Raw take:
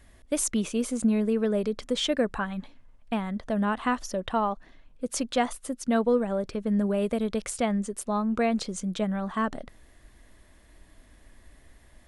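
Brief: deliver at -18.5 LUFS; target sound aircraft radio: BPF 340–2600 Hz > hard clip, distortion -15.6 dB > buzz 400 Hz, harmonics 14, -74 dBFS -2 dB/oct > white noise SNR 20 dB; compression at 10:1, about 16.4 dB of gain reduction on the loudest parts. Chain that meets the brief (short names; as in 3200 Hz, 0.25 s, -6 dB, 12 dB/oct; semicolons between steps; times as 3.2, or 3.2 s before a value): compressor 10:1, threshold -36 dBFS; BPF 340–2600 Hz; hard clip -35.5 dBFS; buzz 400 Hz, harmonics 14, -74 dBFS -2 dB/oct; white noise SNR 20 dB; gain +27 dB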